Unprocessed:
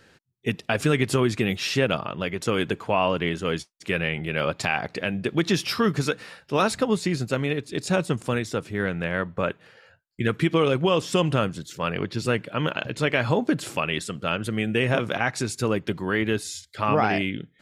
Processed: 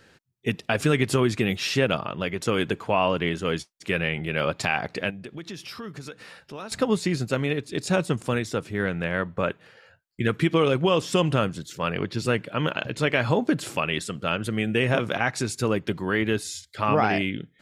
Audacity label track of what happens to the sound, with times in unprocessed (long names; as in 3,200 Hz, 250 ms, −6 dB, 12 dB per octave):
5.100000	6.720000	downward compressor 2.5 to 1, threshold −41 dBFS